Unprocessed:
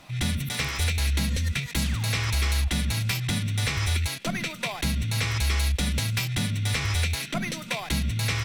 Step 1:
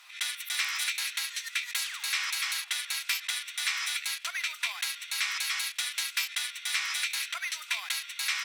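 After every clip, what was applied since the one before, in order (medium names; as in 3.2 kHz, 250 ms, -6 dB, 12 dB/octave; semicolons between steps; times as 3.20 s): inverse Chebyshev high-pass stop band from 200 Hz, stop band 80 dB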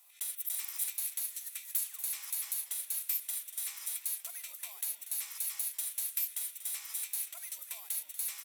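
FFT filter 600 Hz 0 dB, 1.5 kHz -20 dB, 5.1 kHz -12 dB, 13 kHz +13 dB; frequency-shifting echo 238 ms, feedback 49%, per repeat -140 Hz, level -13 dB; trim -4 dB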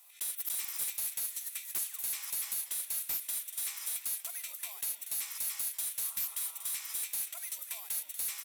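overload inside the chain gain 33.5 dB; spectral replace 6.06–6.80 s, 220–1400 Hz after; trim +3 dB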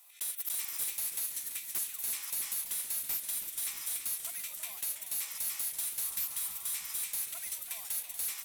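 bucket-brigade echo 319 ms, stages 1024, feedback 76%, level -6 dB; modulated delay 331 ms, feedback 51%, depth 148 cents, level -9 dB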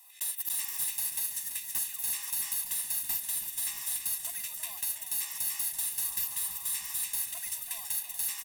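comb 1.1 ms, depth 91%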